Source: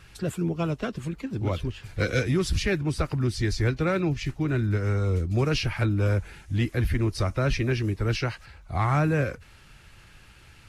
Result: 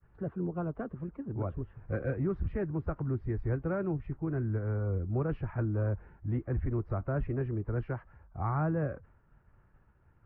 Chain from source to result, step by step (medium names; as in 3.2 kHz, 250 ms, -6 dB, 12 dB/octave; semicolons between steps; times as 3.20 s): expander -46 dBFS; low-pass 1.3 kHz 24 dB/octave; speed mistake 24 fps film run at 25 fps; trim -7 dB